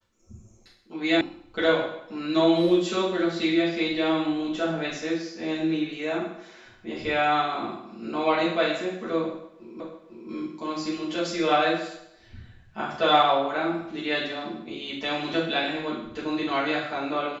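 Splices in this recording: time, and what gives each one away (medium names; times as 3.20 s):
1.21 s: sound stops dead
9.80 s: repeat of the last 0.5 s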